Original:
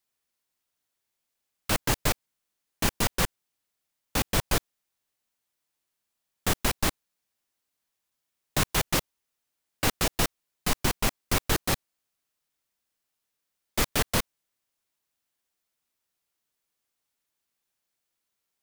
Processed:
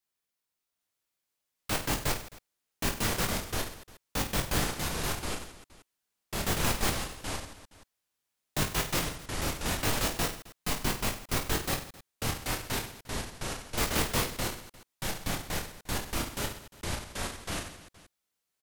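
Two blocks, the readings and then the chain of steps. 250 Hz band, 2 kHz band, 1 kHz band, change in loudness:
-1.0 dB, -1.0 dB, -1.0 dB, -4.5 dB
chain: reverse bouncing-ball echo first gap 20 ms, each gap 1.5×, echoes 5; ever faster or slower copies 785 ms, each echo -5 st, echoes 2; trim -6 dB

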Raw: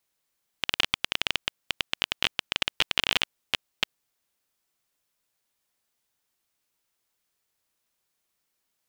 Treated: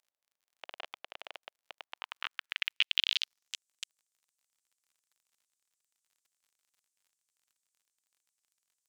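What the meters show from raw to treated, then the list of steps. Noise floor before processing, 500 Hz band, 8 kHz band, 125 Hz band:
-79 dBFS, under -10 dB, -10.5 dB, under -35 dB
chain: band-pass sweep 630 Hz -> 7.6 kHz, 1.73–3.61 s; crackle 45 per s -57 dBFS; tilt shelf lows -6.5 dB, about 760 Hz; trim -6 dB

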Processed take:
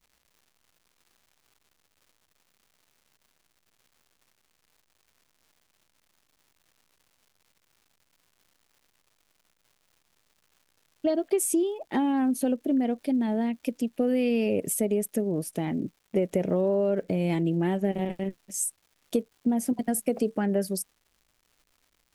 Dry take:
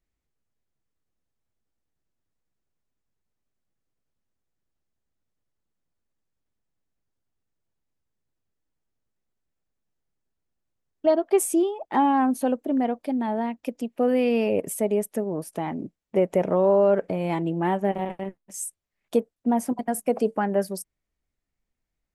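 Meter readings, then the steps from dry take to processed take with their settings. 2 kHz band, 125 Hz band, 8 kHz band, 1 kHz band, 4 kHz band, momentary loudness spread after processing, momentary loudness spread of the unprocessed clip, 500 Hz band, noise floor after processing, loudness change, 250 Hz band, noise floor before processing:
-3.5 dB, +1.5 dB, +2.0 dB, -10.0 dB, -0.5 dB, 7 LU, 12 LU, -4.5 dB, -72 dBFS, -3.0 dB, -0.5 dB, -83 dBFS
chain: peaking EQ 1 kHz -14 dB 1.4 oct; compression, threshold -25 dBFS, peak gain reduction 7.5 dB; crackle 320 per s -56 dBFS; trim +4 dB

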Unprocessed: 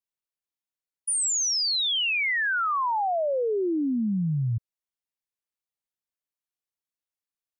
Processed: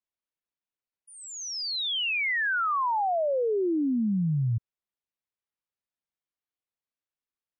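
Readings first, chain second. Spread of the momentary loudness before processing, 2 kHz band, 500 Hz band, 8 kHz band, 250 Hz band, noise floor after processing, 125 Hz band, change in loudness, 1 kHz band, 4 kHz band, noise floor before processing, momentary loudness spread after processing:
5 LU, -1.5 dB, -0.5 dB, -14.0 dB, 0.0 dB, under -85 dBFS, 0.0 dB, -2.5 dB, -1.0 dB, -4.5 dB, under -85 dBFS, 9 LU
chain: distance through air 170 m

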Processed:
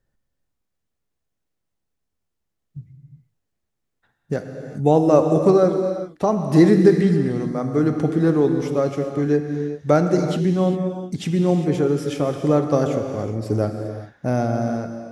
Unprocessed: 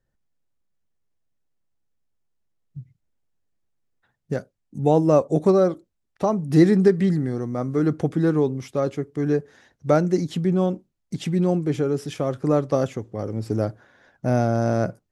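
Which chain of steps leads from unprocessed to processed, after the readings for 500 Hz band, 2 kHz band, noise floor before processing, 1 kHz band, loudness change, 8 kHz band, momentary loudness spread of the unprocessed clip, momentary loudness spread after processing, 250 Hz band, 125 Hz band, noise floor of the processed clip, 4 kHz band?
+3.0 dB, +2.5 dB, -76 dBFS, +3.0 dB, +2.5 dB, no reading, 13 LU, 11 LU, +3.0 dB, +2.0 dB, -78 dBFS, +3.0 dB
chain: fade out at the end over 0.98 s; gated-style reverb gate 430 ms flat, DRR 5 dB; trim +2 dB

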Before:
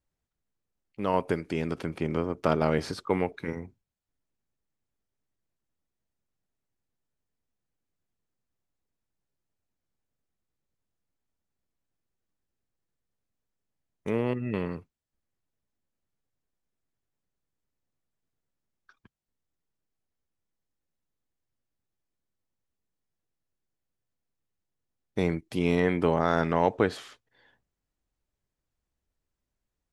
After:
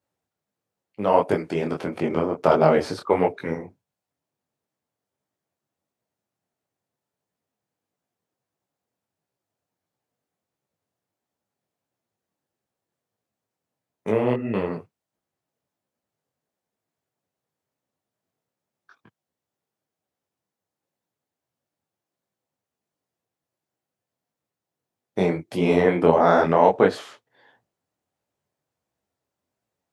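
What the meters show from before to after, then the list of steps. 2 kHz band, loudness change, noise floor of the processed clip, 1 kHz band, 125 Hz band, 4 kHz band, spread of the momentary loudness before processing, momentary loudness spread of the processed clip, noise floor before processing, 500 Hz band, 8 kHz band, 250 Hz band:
+4.5 dB, +7.0 dB, under -85 dBFS, +8.5 dB, +2.5 dB, +3.5 dB, 12 LU, 14 LU, under -85 dBFS, +8.5 dB, no reading, +4.5 dB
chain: high-pass 96 Hz 24 dB/octave; peaking EQ 680 Hz +7.5 dB 1.5 oct; detune thickener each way 52 cents; trim +6.5 dB

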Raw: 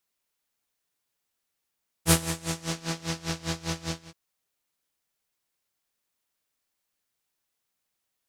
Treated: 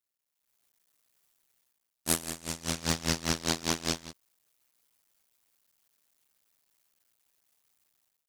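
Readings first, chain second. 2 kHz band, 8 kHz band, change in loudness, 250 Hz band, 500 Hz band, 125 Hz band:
-1.0 dB, -0.5 dB, -1.5 dB, -2.0 dB, -2.0 dB, -6.0 dB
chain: cycle switcher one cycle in 2, muted; treble shelf 6.6 kHz +5 dB; level rider gain up to 16 dB; trim -8.5 dB

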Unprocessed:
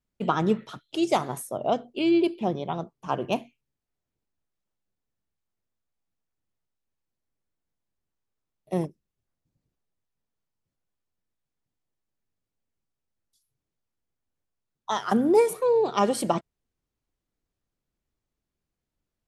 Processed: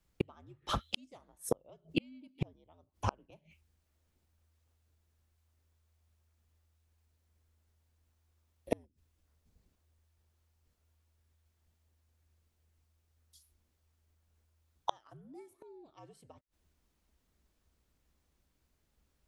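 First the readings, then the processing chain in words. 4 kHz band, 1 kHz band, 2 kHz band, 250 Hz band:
-7.0 dB, -15.5 dB, -11.5 dB, -17.5 dB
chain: frequency shift -80 Hz; inverted gate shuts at -24 dBFS, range -41 dB; trim +8.5 dB

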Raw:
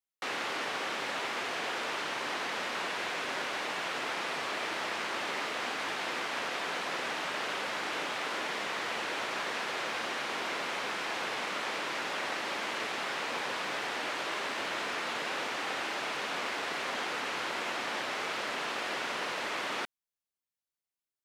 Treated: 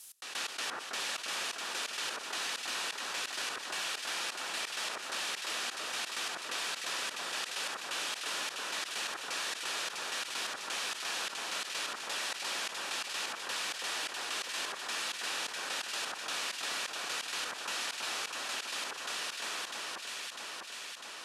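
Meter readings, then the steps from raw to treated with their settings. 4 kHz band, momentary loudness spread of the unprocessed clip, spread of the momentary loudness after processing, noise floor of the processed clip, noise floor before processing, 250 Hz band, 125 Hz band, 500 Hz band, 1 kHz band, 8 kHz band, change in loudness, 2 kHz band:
+1.5 dB, 0 LU, 2 LU, -45 dBFS, under -85 dBFS, -10.0 dB, under -10 dB, -9.0 dB, -6.0 dB, +7.0 dB, -2.0 dB, -4.0 dB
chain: fade out at the end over 3.57 s; trance gate "x..x.x..xx.x" 129 bpm -24 dB; low-pass 12 kHz 24 dB/octave; pre-emphasis filter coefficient 0.9; band-stop 2.1 kHz, Q 10; on a send: echo whose repeats swap between lows and highs 325 ms, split 1.6 kHz, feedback 60%, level -5 dB; on the sum: level flattener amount 70%; trim +8.5 dB

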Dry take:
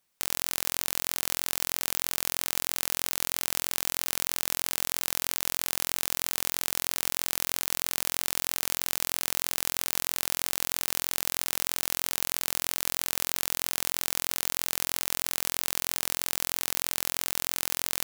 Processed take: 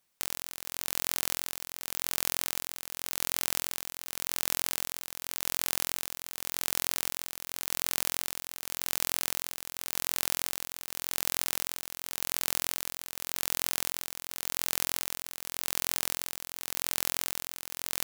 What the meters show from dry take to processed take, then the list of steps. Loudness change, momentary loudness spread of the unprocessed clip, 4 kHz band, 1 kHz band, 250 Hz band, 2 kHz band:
-3.5 dB, 0 LU, -3.5 dB, -3.5 dB, -3.5 dB, -3.5 dB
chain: tremolo 0.88 Hz, depth 73%

